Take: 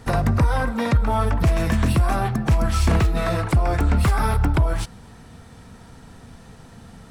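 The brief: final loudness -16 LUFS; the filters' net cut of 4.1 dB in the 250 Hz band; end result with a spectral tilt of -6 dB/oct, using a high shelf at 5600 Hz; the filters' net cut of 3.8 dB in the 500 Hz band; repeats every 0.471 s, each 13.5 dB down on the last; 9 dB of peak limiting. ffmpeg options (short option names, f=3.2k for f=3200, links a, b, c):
-af "equalizer=f=250:t=o:g=-5,equalizer=f=500:t=o:g=-4,highshelf=f=5.6k:g=-4.5,alimiter=limit=-19.5dB:level=0:latency=1,aecho=1:1:471|942:0.211|0.0444,volume=12dB"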